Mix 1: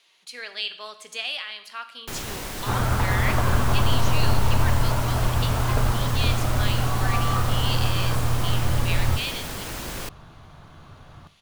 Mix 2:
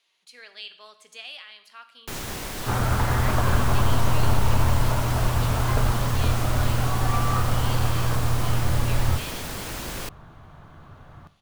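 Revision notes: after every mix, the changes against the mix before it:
speech -9.5 dB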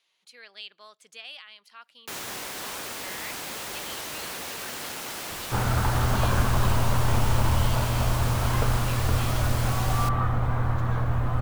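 first sound: add HPF 510 Hz 6 dB/oct; second sound: entry +2.85 s; reverb: off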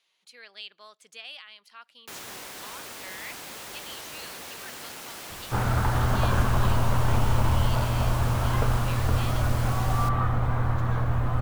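first sound -5.0 dB

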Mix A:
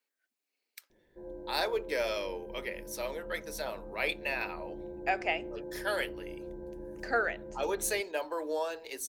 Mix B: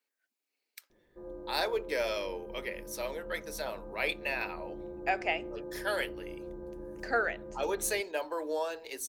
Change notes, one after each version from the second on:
background: remove Butterworth band-stop 1200 Hz, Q 3.2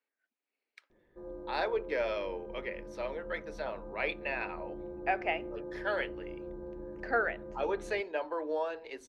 speech: add LPF 2500 Hz 12 dB/oct

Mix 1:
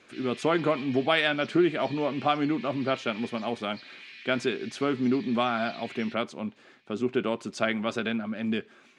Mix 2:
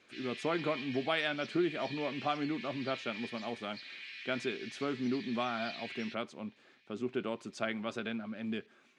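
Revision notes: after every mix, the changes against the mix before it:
speech -8.5 dB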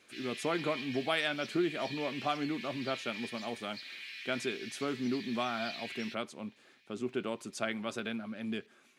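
master: remove air absorption 88 m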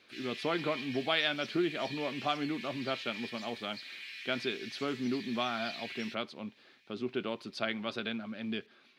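speech: add resonant high shelf 5700 Hz -10 dB, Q 3

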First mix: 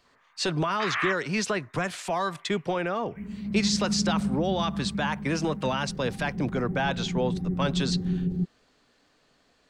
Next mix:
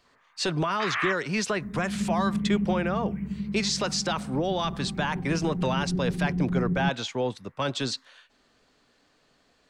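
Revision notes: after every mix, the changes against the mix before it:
second sound: entry -1.55 s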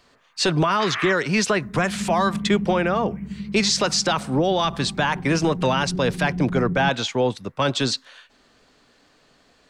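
speech +7.0 dB

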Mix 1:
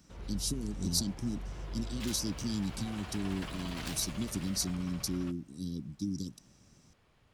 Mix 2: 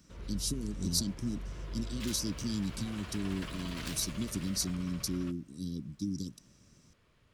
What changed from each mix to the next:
master: add bell 790 Hz -11 dB 0.25 oct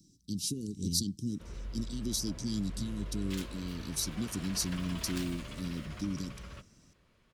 background: entry +1.30 s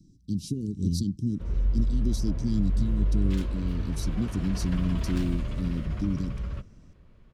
background +3.5 dB; master: add tilt -3 dB/oct

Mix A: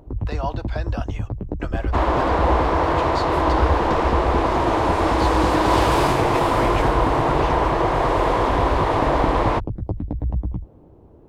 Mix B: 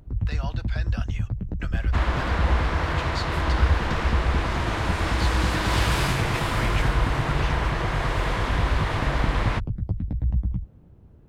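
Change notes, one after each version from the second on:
master: add band shelf 550 Hz -11.5 dB 2.3 oct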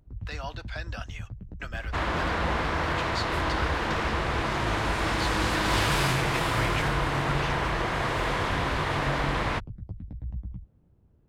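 first sound -11.5 dB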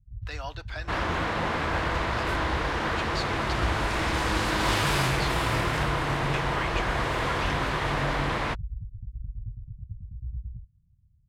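first sound: add inverse Chebyshev low-pass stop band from 840 Hz, stop band 80 dB; second sound: entry -1.05 s

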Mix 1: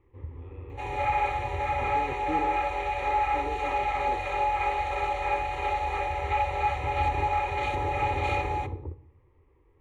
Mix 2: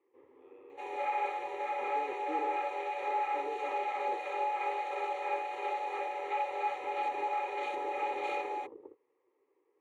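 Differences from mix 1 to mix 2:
first sound: send off; master: add ladder high-pass 330 Hz, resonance 40%

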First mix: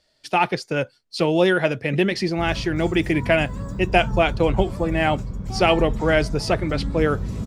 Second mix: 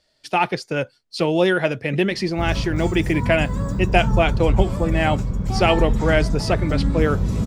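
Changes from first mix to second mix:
background +3.5 dB; reverb: on, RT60 1.1 s

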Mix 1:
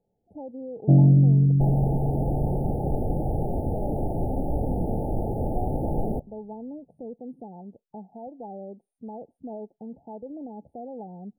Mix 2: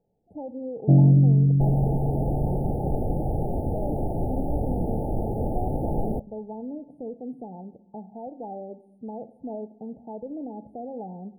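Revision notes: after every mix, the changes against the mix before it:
speech: send on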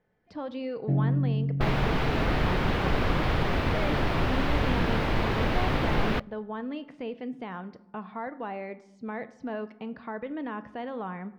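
first sound -9.5 dB; master: remove brick-wall FIR band-stop 890–8900 Hz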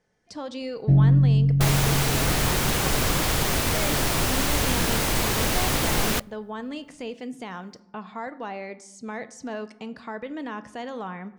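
first sound: remove HPF 220 Hz 12 dB/oct; master: remove air absorption 360 m

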